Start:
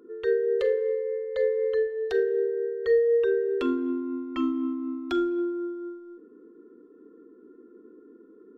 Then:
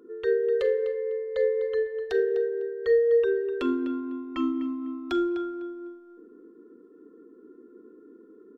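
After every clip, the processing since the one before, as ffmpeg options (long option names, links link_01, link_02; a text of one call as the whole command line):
ffmpeg -i in.wav -filter_complex "[0:a]asplit=2[link_01][link_02];[link_02]adelay=251,lowpass=frequency=3600:poles=1,volume=-11dB,asplit=2[link_03][link_04];[link_04]adelay=251,lowpass=frequency=3600:poles=1,volume=0.25,asplit=2[link_05][link_06];[link_06]adelay=251,lowpass=frequency=3600:poles=1,volume=0.25[link_07];[link_01][link_03][link_05][link_07]amix=inputs=4:normalize=0" out.wav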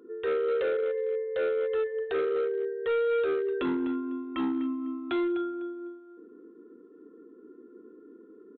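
ffmpeg -i in.wav -af "highpass=frequency=73:poles=1,aresample=8000,asoftclip=type=hard:threshold=-24.5dB,aresample=44100" out.wav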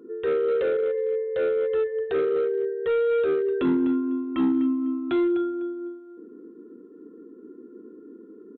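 ffmpeg -i in.wav -af "equalizer=frequency=150:width_type=o:width=2.8:gain=10" out.wav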